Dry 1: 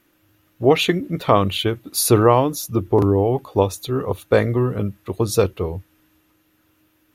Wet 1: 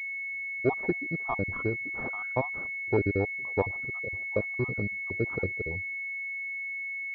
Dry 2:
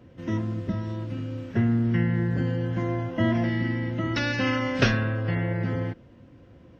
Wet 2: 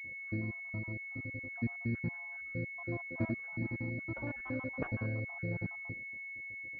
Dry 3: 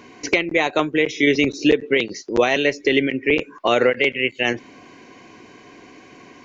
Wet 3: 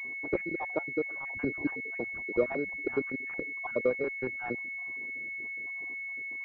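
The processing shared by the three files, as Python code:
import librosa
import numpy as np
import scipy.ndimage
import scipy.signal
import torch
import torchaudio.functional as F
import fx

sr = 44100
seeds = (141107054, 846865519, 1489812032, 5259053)

y = fx.spec_dropout(x, sr, seeds[0], share_pct=63)
y = fx.cheby_harmonics(y, sr, harmonics=(6,), levels_db=(-43,), full_scale_db=-2.0)
y = fx.pwm(y, sr, carrier_hz=2200.0)
y = y * 10.0 ** (-9.0 / 20.0)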